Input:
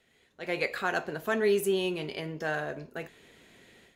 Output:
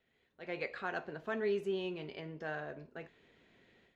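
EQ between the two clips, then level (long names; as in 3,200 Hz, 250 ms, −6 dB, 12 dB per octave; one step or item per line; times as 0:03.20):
high-frequency loss of the air 160 metres
−8.0 dB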